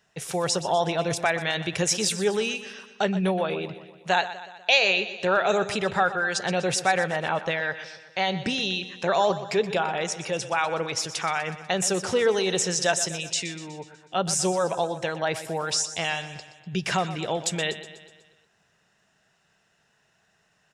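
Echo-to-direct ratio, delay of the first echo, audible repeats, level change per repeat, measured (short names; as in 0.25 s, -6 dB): -12.0 dB, 0.123 s, 5, -5.0 dB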